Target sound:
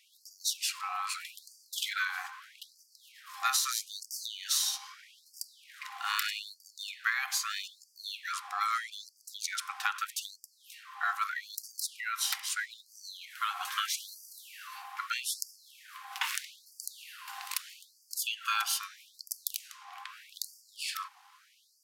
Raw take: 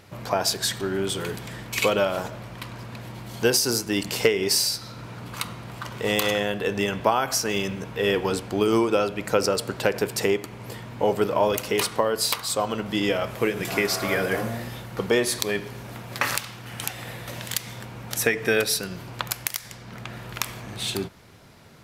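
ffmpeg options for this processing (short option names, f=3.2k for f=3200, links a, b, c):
-af "aeval=exprs='val(0)*sin(2*PI*920*n/s)':c=same,afftfilt=real='re*gte(b*sr/1024,710*pow(4600/710,0.5+0.5*sin(2*PI*0.79*pts/sr)))':imag='im*gte(b*sr/1024,710*pow(4600/710,0.5+0.5*sin(2*PI*0.79*pts/sr)))':win_size=1024:overlap=0.75,volume=-4dB"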